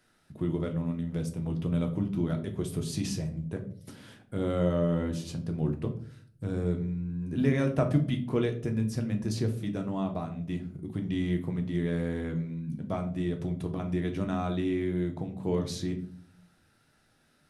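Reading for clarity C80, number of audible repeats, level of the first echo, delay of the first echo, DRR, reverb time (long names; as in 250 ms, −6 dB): 16.0 dB, no echo audible, no echo audible, no echo audible, 4.0 dB, 0.55 s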